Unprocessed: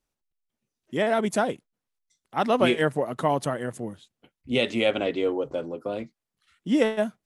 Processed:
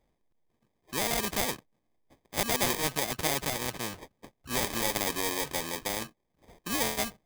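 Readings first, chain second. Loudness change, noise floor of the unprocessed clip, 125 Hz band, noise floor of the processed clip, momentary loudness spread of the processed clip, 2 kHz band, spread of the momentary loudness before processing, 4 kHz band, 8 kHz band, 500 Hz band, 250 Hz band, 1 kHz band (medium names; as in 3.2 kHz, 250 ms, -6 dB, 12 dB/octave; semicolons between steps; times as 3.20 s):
-4.0 dB, under -85 dBFS, -5.5 dB, -78 dBFS, 10 LU, -2.5 dB, 13 LU, +1.0 dB, +12.5 dB, -11.0 dB, -10.0 dB, -5.5 dB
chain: sample-rate reducer 1.4 kHz, jitter 0%; spectrum-flattening compressor 2:1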